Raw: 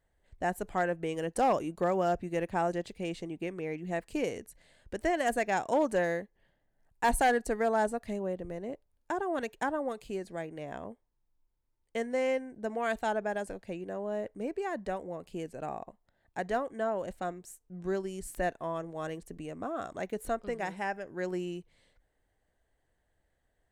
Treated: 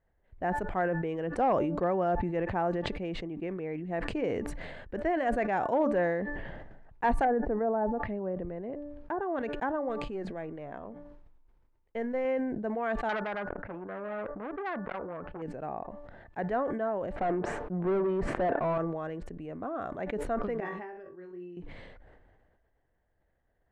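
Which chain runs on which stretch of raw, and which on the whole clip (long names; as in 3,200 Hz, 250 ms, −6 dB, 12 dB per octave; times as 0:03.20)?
0:07.24–0:09.21: treble cut that deepens with the level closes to 910 Hz, closed at −26.5 dBFS + high-frequency loss of the air 77 metres
0:09.89–0:12.25: gain on one half-wave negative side −3 dB + high-shelf EQ 10,000 Hz +3 dB + mains-hum notches 60/120/180 Hz
0:13.09–0:15.42: low-pass with resonance 1,400 Hz, resonance Q 5.4 + saturating transformer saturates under 3,600 Hz
0:17.16–0:18.78: low-pass filter 10,000 Hz + high-shelf EQ 2,500 Hz −11.5 dB + mid-hump overdrive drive 30 dB, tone 1,100 Hz, clips at −20.5 dBFS
0:20.60–0:21.57: low-pass filter 5,600 Hz + tuned comb filter 380 Hz, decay 0.19 s, harmonics odd, mix 90% + flutter between parallel walls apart 3.9 metres, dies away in 0.26 s
whole clip: low-pass filter 1,900 Hz 12 dB per octave; hum removal 291.7 Hz, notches 6; level that may fall only so fast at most 30 dB per second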